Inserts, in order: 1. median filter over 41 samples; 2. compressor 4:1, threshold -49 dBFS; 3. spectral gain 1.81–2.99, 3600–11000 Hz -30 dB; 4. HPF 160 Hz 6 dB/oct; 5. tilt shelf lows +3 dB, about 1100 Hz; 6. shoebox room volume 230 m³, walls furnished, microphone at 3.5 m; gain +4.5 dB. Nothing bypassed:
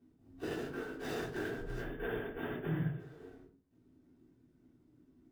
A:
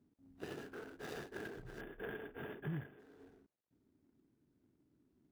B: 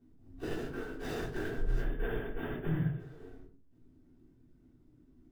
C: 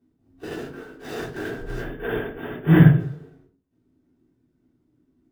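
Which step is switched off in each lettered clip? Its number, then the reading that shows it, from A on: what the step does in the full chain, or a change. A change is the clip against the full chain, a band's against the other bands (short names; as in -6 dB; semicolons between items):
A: 6, echo-to-direct 6.0 dB to none; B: 4, 125 Hz band +3.5 dB; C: 2, mean gain reduction 8.5 dB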